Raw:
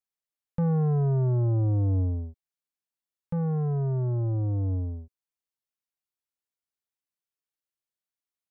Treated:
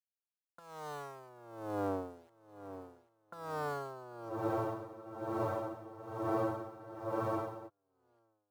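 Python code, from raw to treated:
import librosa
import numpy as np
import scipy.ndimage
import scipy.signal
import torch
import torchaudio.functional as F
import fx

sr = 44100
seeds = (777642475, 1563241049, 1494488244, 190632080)

y = fx.lower_of_two(x, sr, delay_ms=0.32)
y = scipy.signal.sosfilt(scipy.signal.butter(2, 570.0, 'highpass', fs=sr, output='sos'), y)
y = fx.over_compress(y, sr, threshold_db=-44.0, ratio=-0.5)
y = fx.lowpass_res(y, sr, hz=1400.0, q=8.4)
y = np.where(np.abs(y) >= 10.0 ** (-51.5 / 20.0), y, 0.0)
y = fx.echo_feedback(y, sr, ms=793, feedback_pct=47, wet_db=-13.5)
y = fx.spec_freeze(y, sr, seeds[0], at_s=4.33, hold_s=3.34)
y = y * 10.0 ** (-18 * (0.5 - 0.5 * np.cos(2.0 * np.pi * 1.1 * np.arange(len(y)) / sr)) / 20.0)
y = y * 10.0 ** (7.5 / 20.0)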